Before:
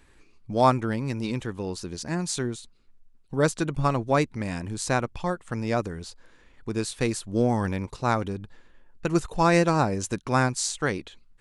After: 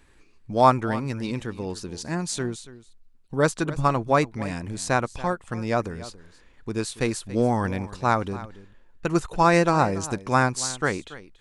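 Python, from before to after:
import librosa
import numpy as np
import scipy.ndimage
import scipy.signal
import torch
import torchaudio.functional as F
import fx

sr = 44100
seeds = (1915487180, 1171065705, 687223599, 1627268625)

y = fx.dynamic_eq(x, sr, hz=1100.0, q=0.75, threshold_db=-34.0, ratio=4.0, max_db=4)
y = y + 10.0 ** (-17.0 / 20.0) * np.pad(y, (int(282 * sr / 1000.0), 0))[:len(y)]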